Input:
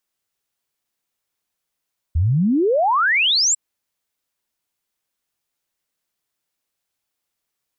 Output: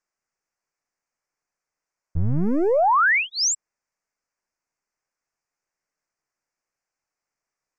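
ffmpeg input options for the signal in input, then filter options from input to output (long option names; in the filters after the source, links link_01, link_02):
-f lavfi -i "aevalsrc='0.2*clip(min(t,1.4-t)/0.01,0,1)*sin(2*PI*74*1.4/log(7900/74)*(exp(log(7900/74)*t/1.4)-1))':duration=1.4:sample_rate=44100"
-filter_complex "[0:a]lowpass=frequency=6500:width=0.5412,lowpass=frequency=6500:width=1.3066,acrossover=split=430[link_01][link_02];[link_01]aeval=exprs='max(val(0),0)':channel_layout=same[link_03];[link_03][link_02]amix=inputs=2:normalize=0,asuperstop=centerf=3500:order=4:qfactor=1.2"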